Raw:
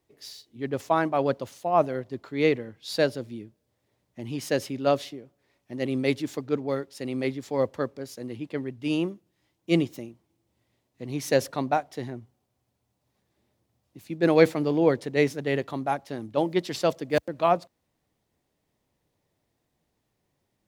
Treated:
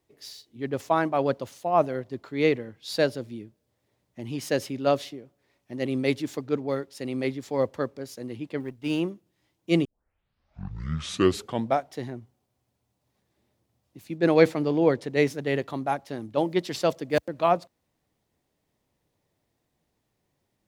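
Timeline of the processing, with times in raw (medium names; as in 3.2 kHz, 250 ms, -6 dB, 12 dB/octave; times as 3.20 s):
8.60–9.00 s: companding laws mixed up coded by A
9.85 s: tape start 2.05 s
14.18–15.10 s: treble shelf 11 kHz -7.5 dB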